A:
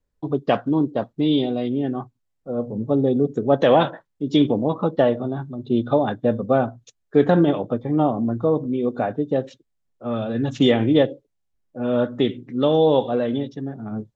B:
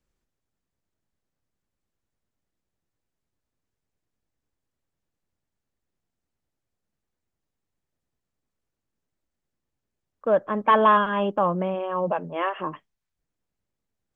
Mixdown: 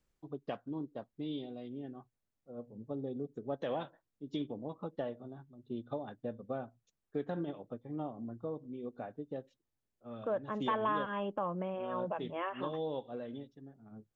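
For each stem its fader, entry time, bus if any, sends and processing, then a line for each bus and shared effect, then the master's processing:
-14.5 dB, 0.00 s, no send, upward expander 1.5:1, over -36 dBFS
+0.5 dB, 0.00 s, no send, auto duck -7 dB, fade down 0.35 s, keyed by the first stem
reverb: off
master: compressor 2:1, threshold -37 dBFS, peak gain reduction 9.5 dB

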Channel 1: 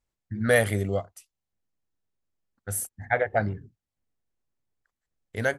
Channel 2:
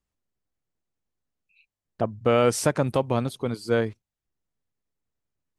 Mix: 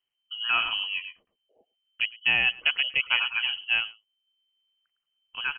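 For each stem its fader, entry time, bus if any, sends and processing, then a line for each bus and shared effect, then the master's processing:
-5.0 dB, 0.00 s, no send, echo send -9 dB, dry
-2.5 dB, 0.00 s, no send, echo send -22.5 dB, reverb removal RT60 0.63 s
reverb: off
echo: echo 0.108 s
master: inverted band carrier 3100 Hz

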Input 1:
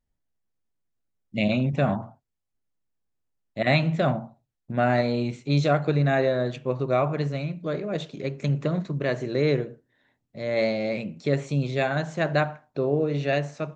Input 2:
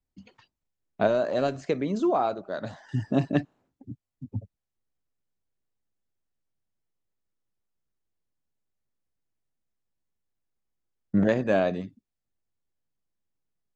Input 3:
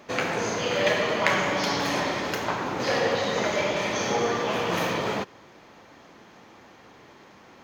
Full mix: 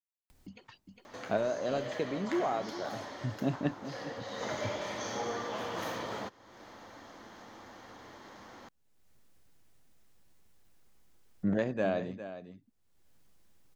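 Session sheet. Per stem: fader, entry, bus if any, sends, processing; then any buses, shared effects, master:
off
-7.5 dB, 0.30 s, no send, echo send -12.5 dB, dry
4.21 s -17 dB -> 4.44 s -9.5 dB, 1.05 s, no send, no echo send, thirty-one-band EQ 160 Hz -11 dB, 400 Hz -5 dB, 2500 Hz -9 dB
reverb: off
echo: echo 0.406 s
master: upward compressor, threshold -40 dBFS

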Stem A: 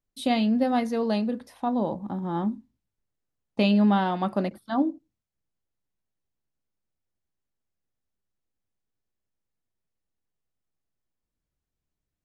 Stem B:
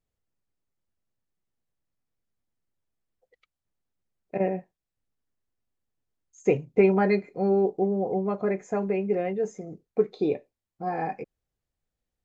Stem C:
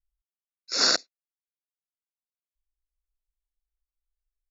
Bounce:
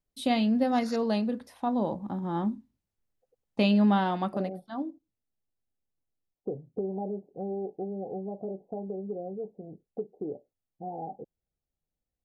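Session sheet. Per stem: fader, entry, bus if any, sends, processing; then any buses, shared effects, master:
4.19 s -2 dB -> 4.51 s -10 dB, 0.00 s, no send, dry
-4.5 dB, 0.00 s, no send, Chebyshev low-pass 850 Hz, order 6; compressor 2:1, threshold -31 dBFS, peak gain reduction 9 dB
-16.5 dB, 0.00 s, no send, auto swell 0.269 s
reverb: off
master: dry

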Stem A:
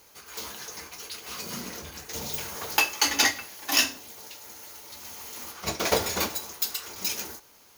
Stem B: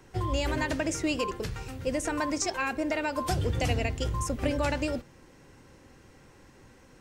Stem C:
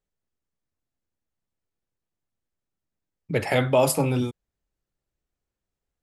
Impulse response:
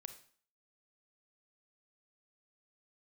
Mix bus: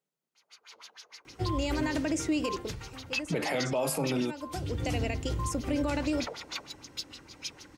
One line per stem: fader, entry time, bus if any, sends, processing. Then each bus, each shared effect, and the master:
-14.5 dB, 0.35 s, no send, tilt +3.5 dB/oct; LFO low-pass sine 6.5 Hz 460–5000 Hz; low shelf 450 Hz -8 dB
-1.0 dB, 1.25 s, no send, bell 300 Hz +7.5 dB 0.3 oct; auto duck -12 dB, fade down 0.80 s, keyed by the third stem
+1.0 dB, 0.00 s, no send, Chebyshev high-pass 150 Hz, order 4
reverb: off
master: HPF 41 Hz; notch 1700 Hz, Q 18; limiter -21 dBFS, peak gain reduction 13 dB

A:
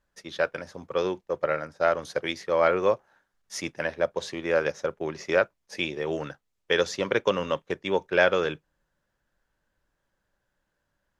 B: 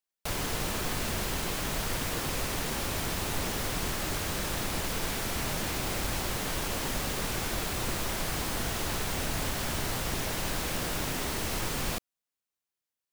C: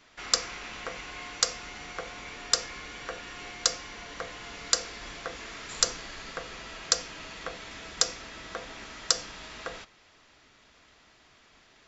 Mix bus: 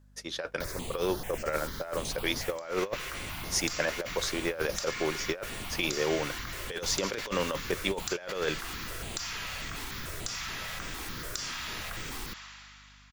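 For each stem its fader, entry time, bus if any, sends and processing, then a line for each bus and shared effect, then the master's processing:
-2.0 dB, 0.00 s, no bus, no send, tone controls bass -3 dB, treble +7 dB
-5.5 dB, 0.35 s, bus A, no send, step phaser 6.8 Hz 570–7900 Hz
-7.0 dB, 2.25 s, bus A, no send, HPF 990 Hz 24 dB/oct; sustainer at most 21 dB/s
bus A: 0.0 dB, hum 50 Hz, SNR 27 dB; compressor 6:1, threshold -37 dBFS, peak gain reduction 12.5 dB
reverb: off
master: negative-ratio compressor -29 dBFS, ratio -0.5

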